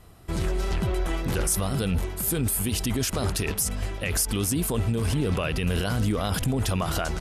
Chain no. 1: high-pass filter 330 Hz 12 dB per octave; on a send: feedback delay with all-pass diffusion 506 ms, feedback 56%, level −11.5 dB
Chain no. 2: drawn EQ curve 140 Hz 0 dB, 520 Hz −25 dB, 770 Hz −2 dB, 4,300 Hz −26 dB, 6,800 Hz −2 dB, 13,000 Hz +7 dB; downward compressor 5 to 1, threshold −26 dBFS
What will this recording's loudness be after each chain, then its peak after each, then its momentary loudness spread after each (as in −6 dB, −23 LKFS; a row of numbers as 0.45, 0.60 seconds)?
−29.0, −30.5 LKFS; −13.0, −13.5 dBFS; 7, 4 LU